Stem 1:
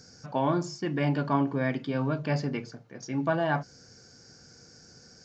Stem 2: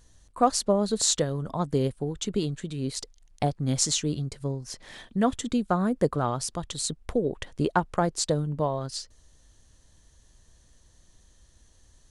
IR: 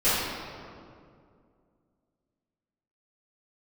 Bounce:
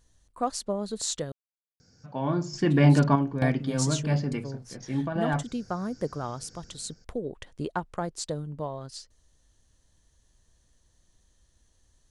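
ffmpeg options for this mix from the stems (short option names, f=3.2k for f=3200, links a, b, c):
-filter_complex "[0:a]lowshelf=f=210:g=9,dynaudnorm=f=170:g=5:m=9dB,adelay=1800,volume=-3.5dB,afade=t=out:st=3:d=0.76:silence=0.421697[a];[1:a]volume=-7dB,asplit=3[b][c][d];[b]atrim=end=1.32,asetpts=PTS-STARTPTS,afade=t=out:st=1.316:d=0.004:c=hsin[e];[c]atrim=start=1.32:end=2.53,asetpts=PTS-STARTPTS,volume=0[f];[d]atrim=start=2.53,asetpts=PTS-STARTPTS,afade=t=in:d=0.004:c=hsin[g];[e][f][g]concat=n=3:v=0:a=1,asplit=2[h][i];[i]apad=whole_len=310649[j];[a][j]sidechaingate=range=-7dB:threshold=-55dB:ratio=16:detection=peak[k];[k][h]amix=inputs=2:normalize=0"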